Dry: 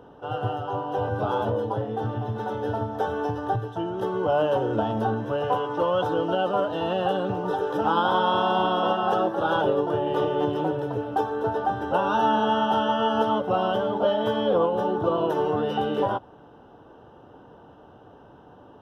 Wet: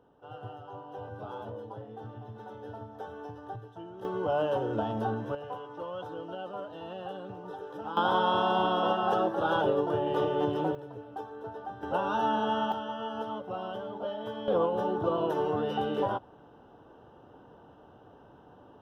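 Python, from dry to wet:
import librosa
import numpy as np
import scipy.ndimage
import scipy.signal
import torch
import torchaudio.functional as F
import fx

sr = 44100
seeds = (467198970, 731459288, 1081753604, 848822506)

y = fx.gain(x, sr, db=fx.steps((0.0, -15.0), (4.05, -6.0), (5.35, -15.0), (7.97, -4.0), (10.75, -15.0), (11.83, -6.5), (12.72, -13.0), (14.48, -5.0)))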